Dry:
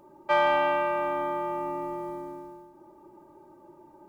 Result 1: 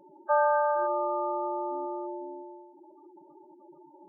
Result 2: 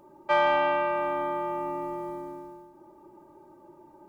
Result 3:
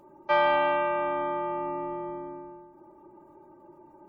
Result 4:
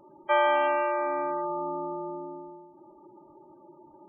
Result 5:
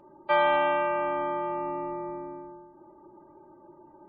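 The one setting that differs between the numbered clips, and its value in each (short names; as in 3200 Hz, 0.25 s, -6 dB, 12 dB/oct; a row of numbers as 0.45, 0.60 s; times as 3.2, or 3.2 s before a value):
spectral gate, under each frame's peak: -10, -60, -45, -20, -35 dB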